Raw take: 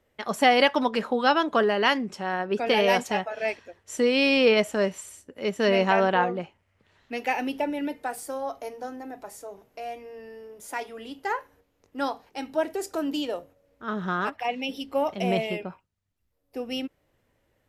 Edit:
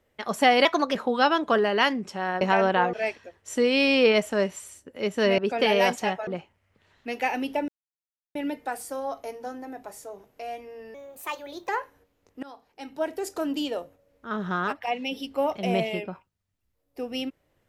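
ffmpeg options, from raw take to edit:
ffmpeg -i in.wav -filter_complex "[0:a]asplit=11[link_01][link_02][link_03][link_04][link_05][link_06][link_07][link_08][link_09][link_10][link_11];[link_01]atrim=end=0.654[link_12];[link_02]atrim=start=0.65:end=1,asetpts=PTS-STARTPTS,asetrate=51156,aresample=44100,atrim=end_sample=13306,asetpts=PTS-STARTPTS[link_13];[link_03]atrim=start=0.996:end=2.462[link_14];[link_04]atrim=start=5.798:end=6.322[link_15];[link_05]atrim=start=3.348:end=5.802[link_16];[link_06]atrim=start=2.458:end=3.352[link_17];[link_07]atrim=start=6.318:end=7.73,asetpts=PTS-STARTPTS,afade=type=out:start_time=1.408:duration=0.004:curve=hsin,apad=pad_dur=0.67[link_18];[link_08]atrim=start=7.73:end=10.324,asetpts=PTS-STARTPTS,afade=type=in:duration=0.004:curve=hsin[link_19];[link_09]atrim=start=10.32:end=11.26,asetpts=PTS-STARTPTS,asetrate=55566,aresample=44100[link_20];[link_10]atrim=start=11.256:end=12,asetpts=PTS-STARTPTS,afade=type=out:start_time=0.74:duration=0.004:curve=hsin:silence=0.0749894[link_21];[link_11]atrim=start=12,asetpts=PTS-STARTPTS,afade=type=in:duration=0.86:silence=0.0749894[link_22];[link_12][link_13]acrossfade=duration=0.004:curve1=hsin:curve2=hsin[link_23];[link_23][link_14]acrossfade=duration=0.004:curve1=hsin:curve2=hsin[link_24];[link_24][link_15]acrossfade=duration=0.004:curve1=hsin:curve2=hsin[link_25];[link_25][link_16]acrossfade=duration=0.004:curve1=hsin:curve2=hsin[link_26];[link_26][link_17]acrossfade=duration=0.004:curve1=hsin:curve2=hsin[link_27];[link_18][link_19]concat=n=2:v=0:a=1[link_28];[link_27][link_28]acrossfade=duration=0.004:curve1=hsin:curve2=hsin[link_29];[link_29][link_20]acrossfade=duration=0.004:curve1=hsin:curve2=hsin[link_30];[link_21][link_22]concat=n=2:v=0:a=1[link_31];[link_30][link_31]acrossfade=duration=0.004:curve1=hsin:curve2=hsin" out.wav

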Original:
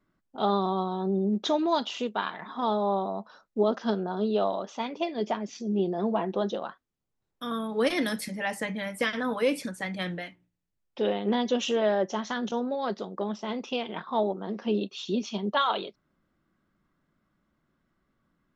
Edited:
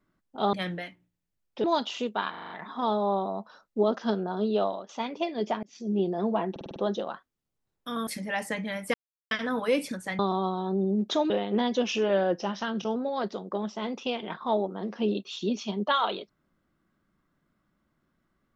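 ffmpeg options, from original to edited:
ffmpeg -i in.wav -filter_complex "[0:a]asplit=21[link_01][link_02][link_03][link_04][link_05][link_06][link_07][link_08][link_09][link_10][link_11][link_12][link_13][link_14][link_15][link_16][link_17][link_18][link_19][link_20][link_21];[link_01]atrim=end=0.532[link_22];[link_02]atrim=start=9.928:end=11.042[link_23];[link_03]atrim=start=1.638:end=2.342[link_24];[link_04]atrim=start=2.298:end=2.342[link_25];[link_05]atrim=start=2.298:end=2.342[link_26];[link_06]atrim=start=2.298:end=2.342[link_27];[link_07]atrim=start=2.298:end=2.342[link_28];[link_08]atrim=start=2.298:end=4.69,asetpts=PTS-STARTPTS,afade=type=out:start_time=2.122:duration=0.27:silence=0.237137[link_29];[link_09]atrim=start=4.69:end=5.43,asetpts=PTS-STARTPTS,afade=type=in:duration=0.004:curve=hsin:silence=0.237137,afade=type=out:start_time=0.736:duration=0.004:curve=hsin[link_30];[link_10]atrim=start=5.43:end=6.362,asetpts=PTS-STARTPTS,afade=type=in:duration=0.26[link_31];[link_11]atrim=start=6.308:end=6.362[link_32];[link_12]atrim=start=6.308:end=6.362[link_33];[link_13]atrim=start=6.308:end=6.362[link_34];[link_14]atrim=start=6.308:end=6.362[link_35];[link_15]atrim=start=6.308:end=7.622[link_36];[link_16]atrim=start=8.178:end=9.05,asetpts=PTS-STARTPTS,afade=type=out:start_time=0.868:duration=0.004:curve=hsin,apad=pad_dur=0.37[link_37];[link_17]atrim=start=9.05:end=9.932,asetpts=PTS-STARTPTS,afade=type=in:duration=0.004:curve=hsin[link_38];[link_18]atrim=start=0.528:end=1.642[link_39];[link_19]atrim=start=11.038:end=11.584[link_40];[link_20]atrim=start=11.58:end=12.62,asetpts=PTS-STARTPTS,asetrate=41013,aresample=44100,atrim=end_sample=49316,asetpts=PTS-STARTPTS[link_41];[link_21]atrim=start=12.616[link_42];[link_22][link_23]acrossfade=duration=0.004:curve1=hsin:curve2=hsin[link_43];[link_43][link_24]acrossfade=duration=0.004:curve1=hsin:curve2=hsin[link_44];[link_44][link_25]acrossfade=duration=0.004:curve1=hsin:curve2=hsin[link_45];[link_45][link_26]acrossfade=duration=0.004:curve1=hsin:curve2=hsin[link_46];[link_46][link_27]acrossfade=duration=0.004:curve1=hsin:curve2=hsin[link_47];[link_47][link_28]acrossfade=duration=0.004:curve1=hsin:curve2=hsin[link_48];[link_29][link_30][link_31]concat=n=3:v=0:a=1[link_49];[link_48][link_49]acrossfade=duration=0.004:curve1=hsin:curve2=hsin[link_50];[link_50][link_32]acrossfade=duration=0.004:curve1=hsin:curve2=hsin[link_51];[link_51][link_33]acrossfade=duration=0.004:curve1=hsin:curve2=hsin[link_52];[link_52][link_34]acrossfade=duration=0.004:curve1=hsin:curve2=hsin[link_53];[link_53][link_35]acrossfade=duration=0.004:curve1=hsin:curve2=hsin[link_54];[link_54][link_36]acrossfade=duration=0.004:curve1=hsin:curve2=hsin[link_55];[link_37][link_38]concat=n=2:v=0:a=1[link_56];[link_55][link_56]acrossfade=duration=0.004:curve1=hsin:curve2=hsin[link_57];[link_57][link_39]acrossfade=duration=0.004:curve1=hsin:curve2=hsin[link_58];[link_58][link_40]acrossfade=duration=0.004:curve1=hsin:curve2=hsin[link_59];[link_59][link_41]acrossfade=duration=0.004:curve1=hsin:curve2=hsin[link_60];[link_60][link_42]acrossfade=duration=0.004:curve1=hsin:curve2=hsin" out.wav

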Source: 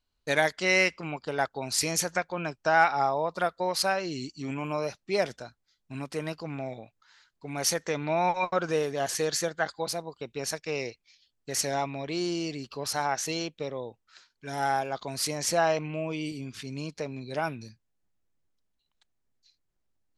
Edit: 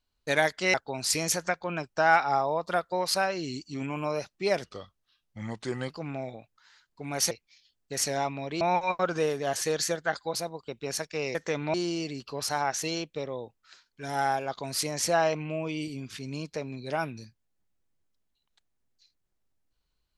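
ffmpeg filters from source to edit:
ffmpeg -i in.wav -filter_complex "[0:a]asplit=8[link_01][link_02][link_03][link_04][link_05][link_06][link_07][link_08];[link_01]atrim=end=0.742[link_09];[link_02]atrim=start=1.418:end=5.324[link_10];[link_03]atrim=start=5.32:end=6.34,asetpts=PTS-STARTPTS,asetrate=35721,aresample=44100,atrim=end_sample=55533,asetpts=PTS-STARTPTS[link_11];[link_04]atrim=start=6.336:end=7.752[link_12];[link_05]atrim=start=10.878:end=12.182[link_13];[link_06]atrim=start=8.138:end=10.882[link_14];[link_07]atrim=start=7.748:end=8.142[link_15];[link_08]atrim=start=12.178[link_16];[link_09][link_10]acrossfade=duration=0.004:curve1=hsin:curve2=hsin[link_17];[link_17][link_11]acrossfade=duration=0.004:curve1=hsin:curve2=hsin[link_18];[link_18][link_12]acrossfade=duration=0.004:curve1=hsin:curve2=hsin[link_19];[link_19][link_13]acrossfade=duration=0.004:curve1=hsin:curve2=hsin[link_20];[link_20][link_14]acrossfade=duration=0.004:curve1=hsin:curve2=hsin[link_21];[link_21][link_15]acrossfade=duration=0.004:curve1=hsin:curve2=hsin[link_22];[link_22][link_16]acrossfade=duration=0.004:curve1=hsin:curve2=hsin" out.wav

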